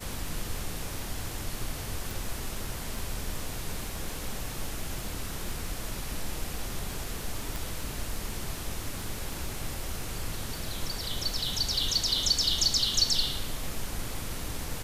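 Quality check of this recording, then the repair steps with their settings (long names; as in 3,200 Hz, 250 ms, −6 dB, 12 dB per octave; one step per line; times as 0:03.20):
surface crackle 22 per second −36 dBFS
0:02.11: click
0:07.56: click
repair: click removal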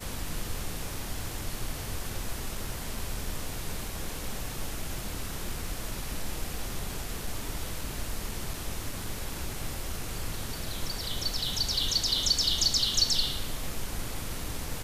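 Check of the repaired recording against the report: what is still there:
none of them is left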